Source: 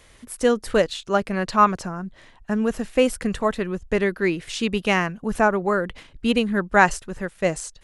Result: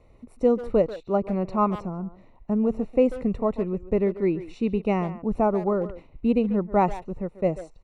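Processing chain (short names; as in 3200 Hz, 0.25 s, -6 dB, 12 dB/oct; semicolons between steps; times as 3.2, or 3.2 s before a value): running mean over 27 samples; speakerphone echo 0.14 s, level -13 dB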